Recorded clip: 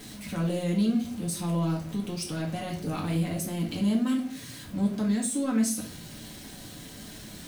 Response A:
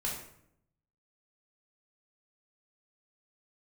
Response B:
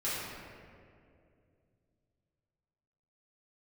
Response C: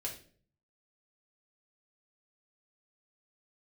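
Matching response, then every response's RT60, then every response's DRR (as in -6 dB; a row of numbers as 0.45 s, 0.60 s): C; 0.70 s, 2.4 s, 0.45 s; -3.0 dB, -11.0 dB, -2.5 dB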